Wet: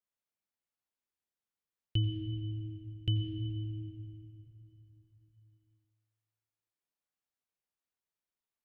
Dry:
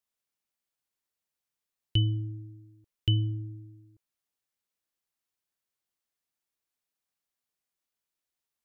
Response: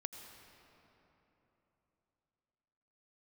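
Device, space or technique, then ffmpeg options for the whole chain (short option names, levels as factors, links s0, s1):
swimming-pool hall: -filter_complex "[1:a]atrim=start_sample=2205[s0];[0:a][s0]afir=irnorm=-1:irlink=0,highshelf=f=3300:g=-7,volume=0.841"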